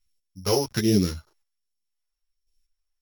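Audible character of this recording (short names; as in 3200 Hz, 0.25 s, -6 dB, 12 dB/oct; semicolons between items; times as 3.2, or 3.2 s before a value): a buzz of ramps at a fixed pitch in blocks of 8 samples; phasing stages 2, 1.3 Hz, lowest notch 190–1100 Hz; chopped level 0.81 Hz, depth 65%, duty 15%; a shimmering, thickened sound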